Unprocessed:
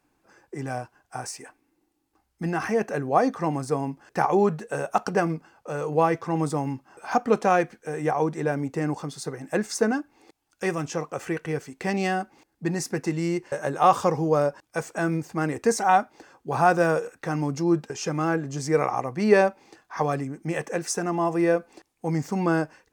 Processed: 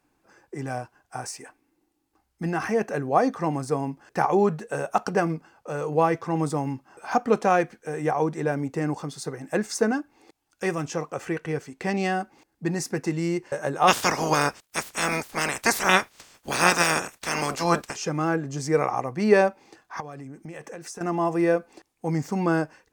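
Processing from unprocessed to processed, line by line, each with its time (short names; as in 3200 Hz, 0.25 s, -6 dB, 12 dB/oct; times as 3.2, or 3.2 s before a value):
11.14–12.15 high shelf 9000 Hz -5 dB
13.87–17.95 spectral limiter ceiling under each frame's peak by 30 dB
20–21.01 compressor 5:1, threshold -36 dBFS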